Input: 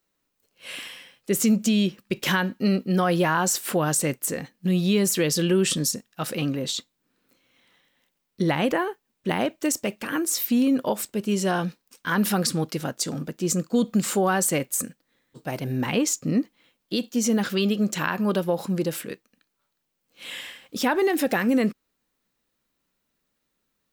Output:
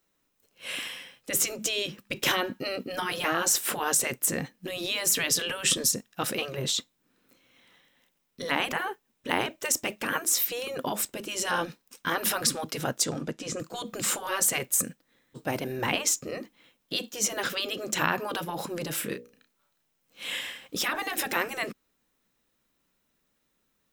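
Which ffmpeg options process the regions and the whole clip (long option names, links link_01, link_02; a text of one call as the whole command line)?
ffmpeg -i in.wav -filter_complex "[0:a]asettb=1/sr,asplit=3[link_01][link_02][link_03];[link_01]atrim=end=13.054[link_04];[link_02]atrim=start=13.05:end=13.6,asetpts=PTS-STARTPTS,afade=type=in:duration=0.004:curve=qsin,afade=type=out:start_time=0.546:duration=0.004:curve=qsin,lowpass=8700,acrossover=split=4100[link_05][link_06];[link_06]acompressor=threshold=-39dB:ratio=4:attack=1:release=60[link_07];[link_05][link_07]amix=inputs=2:normalize=0[link_08];[link_03]atrim=start=13.596[link_09];[link_04][link_08]acrossfade=duration=0.004:curve1=hsin:curve2=qsin[link_10];[link_10][link_09]acrossfade=duration=0.004:curve1=qsin:curve2=hsin,asettb=1/sr,asplit=3[link_11][link_12][link_13];[link_11]atrim=end=18.944[link_14];[link_12]atrim=start=18.94:end=20.39,asetpts=PTS-STARTPTS,afade=type=in:duration=0.004:curve=qsin,afade=type=out:start_time=1.446:duration=0.004:curve=qsin,bandreject=frequency=60:width_type=h:width=6,bandreject=frequency=120:width_type=h:width=6,bandreject=frequency=180:width_type=h:width=6,bandreject=frequency=240:width_type=h:width=6,bandreject=frequency=300:width_type=h:width=6,bandreject=frequency=360:width_type=h:width=6,bandreject=frequency=420:width_type=h:width=6,bandreject=frequency=480:width_type=h:width=6,bandreject=frequency=540:width_type=h:width=6,bandreject=frequency=600:width_type=h:width=6,asplit=2[link_15][link_16];[link_16]adelay=33,volume=-6dB[link_17];[link_15][link_17]amix=inputs=2:normalize=0,atrim=end_sample=63945[link_18];[link_13]atrim=start=20.386[link_19];[link_14][link_18]acrossfade=duration=0.004:curve1=hsin:curve2=qsin[link_20];[link_20][link_19]acrossfade=duration=0.004:curve1=qsin:curve2=hsin,bandreject=frequency=4500:width=14,afftfilt=real='re*lt(hypot(re,im),0.251)':imag='im*lt(hypot(re,im),0.251)':win_size=1024:overlap=0.75,volume=2dB" out.wav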